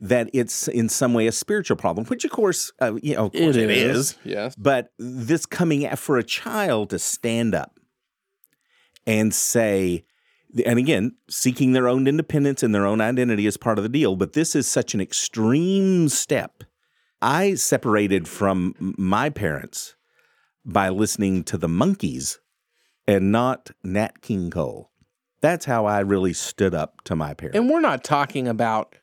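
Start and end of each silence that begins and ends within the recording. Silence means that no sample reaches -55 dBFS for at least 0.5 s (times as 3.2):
7.83–8.44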